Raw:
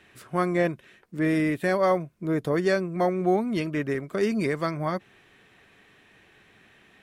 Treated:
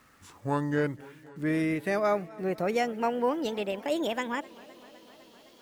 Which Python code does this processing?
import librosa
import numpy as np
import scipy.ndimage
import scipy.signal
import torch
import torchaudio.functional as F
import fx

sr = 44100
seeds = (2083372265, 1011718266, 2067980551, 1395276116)

y = fx.speed_glide(x, sr, from_pct=69, to_pct=181)
y = fx.quant_dither(y, sr, seeds[0], bits=10, dither='none')
y = fx.echo_warbled(y, sr, ms=255, feedback_pct=77, rate_hz=2.8, cents=98, wet_db=-22.5)
y = y * 10.0 ** (-4.0 / 20.0)